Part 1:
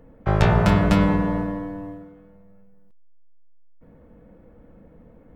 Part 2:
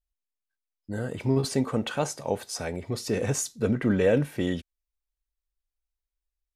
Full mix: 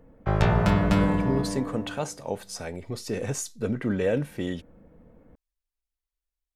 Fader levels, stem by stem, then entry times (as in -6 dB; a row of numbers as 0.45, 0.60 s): -4.0, -3.0 dB; 0.00, 0.00 s